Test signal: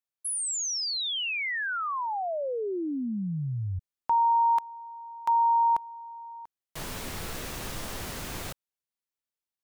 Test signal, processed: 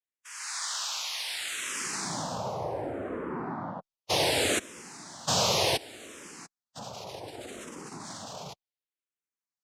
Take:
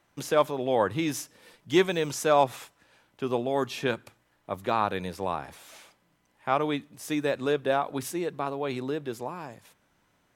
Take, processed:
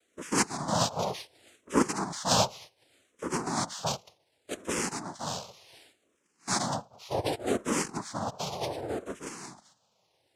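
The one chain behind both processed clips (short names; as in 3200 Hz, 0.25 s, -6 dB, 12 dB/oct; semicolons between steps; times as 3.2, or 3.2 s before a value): bin magnitudes rounded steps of 30 dB; noise vocoder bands 2; endless phaser -0.67 Hz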